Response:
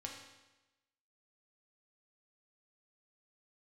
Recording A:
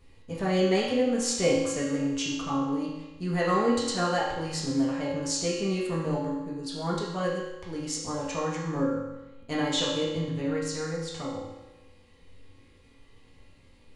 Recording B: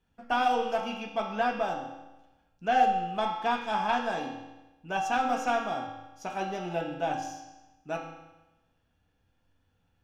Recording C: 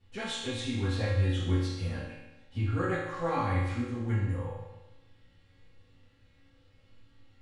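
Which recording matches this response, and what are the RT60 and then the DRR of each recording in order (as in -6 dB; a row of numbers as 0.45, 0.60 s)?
B; 1.0, 1.0, 1.0 s; -7.5, -0.5, -14.0 dB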